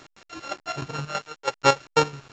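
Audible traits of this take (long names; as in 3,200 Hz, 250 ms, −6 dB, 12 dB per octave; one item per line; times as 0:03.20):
a buzz of ramps at a fixed pitch in blocks of 32 samples
chopped level 6.1 Hz, depth 65%, duty 40%
a quantiser's noise floor 8 bits, dither none
A-law companding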